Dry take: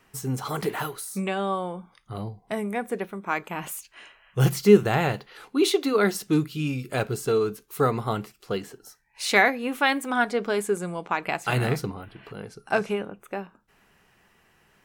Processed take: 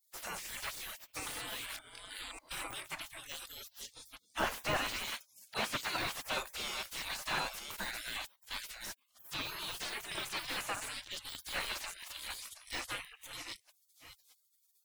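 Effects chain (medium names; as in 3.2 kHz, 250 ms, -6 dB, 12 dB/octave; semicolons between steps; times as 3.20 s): chunks repeated in reverse 597 ms, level -8.5 dB; de-esser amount 90%; spectral gate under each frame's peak -30 dB weak; 5.04–5.97 s: high-pass 130 Hz 12 dB/octave; slew-rate limiter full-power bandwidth 18 Hz; trim +10 dB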